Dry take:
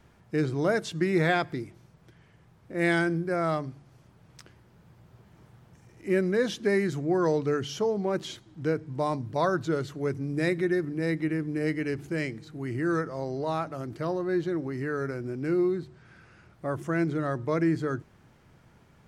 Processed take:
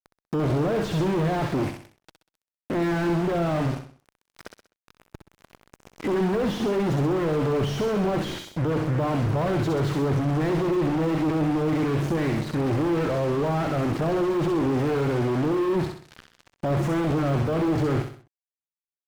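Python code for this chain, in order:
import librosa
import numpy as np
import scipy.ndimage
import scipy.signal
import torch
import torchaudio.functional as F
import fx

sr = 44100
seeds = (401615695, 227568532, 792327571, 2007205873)

p1 = fx.fuzz(x, sr, gain_db=47.0, gate_db=-47.0)
p2 = p1 + fx.echo_feedback(p1, sr, ms=64, feedback_pct=41, wet_db=-10, dry=0)
p3 = fx.slew_limit(p2, sr, full_power_hz=140.0)
y = p3 * 10.0 ** (-8.5 / 20.0)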